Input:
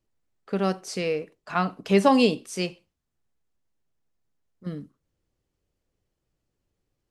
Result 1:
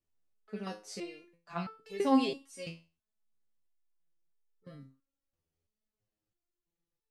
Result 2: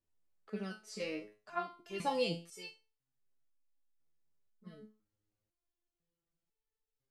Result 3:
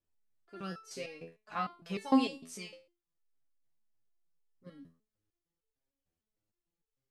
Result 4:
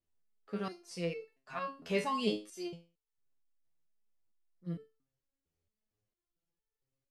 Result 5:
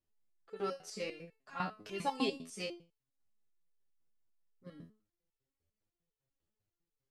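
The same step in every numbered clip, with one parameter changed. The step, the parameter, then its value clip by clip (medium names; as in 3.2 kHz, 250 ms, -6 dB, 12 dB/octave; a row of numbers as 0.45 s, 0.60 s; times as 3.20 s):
resonator arpeggio, rate: 3 Hz, 2 Hz, 6.6 Hz, 4.4 Hz, 10 Hz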